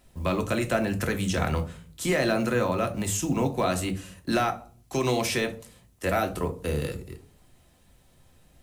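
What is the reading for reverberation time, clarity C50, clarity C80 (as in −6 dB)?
0.45 s, 14.5 dB, 20.0 dB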